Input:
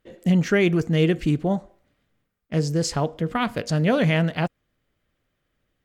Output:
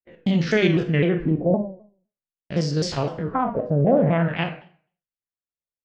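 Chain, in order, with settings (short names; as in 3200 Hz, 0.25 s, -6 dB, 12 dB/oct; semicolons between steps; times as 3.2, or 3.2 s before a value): stepped spectrum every 50 ms; gate -44 dBFS, range -34 dB; LFO low-pass sine 0.47 Hz 540–4800 Hz; Schroeder reverb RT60 0.49 s, combs from 31 ms, DRR 7 dB; shaped vibrato saw down 3.9 Hz, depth 160 cents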